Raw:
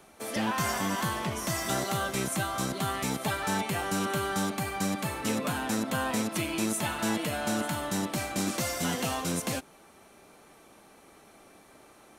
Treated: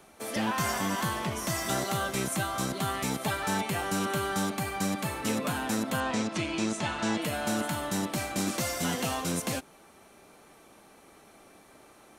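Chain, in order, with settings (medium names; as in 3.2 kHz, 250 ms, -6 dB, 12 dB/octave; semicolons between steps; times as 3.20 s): 6.00–7.22 s: low-pass 7.2 kHz 24 dB/octave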